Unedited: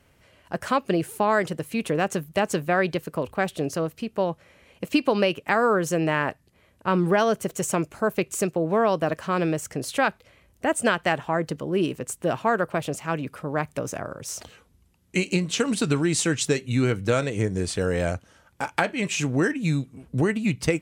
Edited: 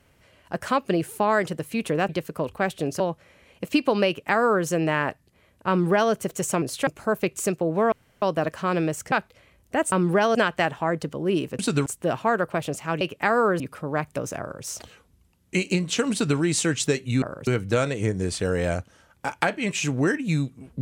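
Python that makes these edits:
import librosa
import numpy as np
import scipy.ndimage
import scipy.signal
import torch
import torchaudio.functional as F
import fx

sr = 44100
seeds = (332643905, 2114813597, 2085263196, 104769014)

y = fx.edit(x, sr, fx.cut(start_s=2.09, length_s=0.78),
    fx.cut(start_s=3.78, length_s=0.42),
    fx.duplicate(start_s=5.27, length_s=0.59, to_s=13.21),
    fx.duplicate(start_s=6.89, length_s=0.43, to_s=10.82),
    fx.insert_room_tone(at_s=8.87, length_s=0.3),
    fx.move(start_s=9.77, length_s=0.25, to_s=7.82),
    fx.duplicate(start_s=14.01, length_s=0.25, to_s=16.83),
    fx.duplicate(start_s=15.73, length_s=0.27, to_s=12.06), tone=tone)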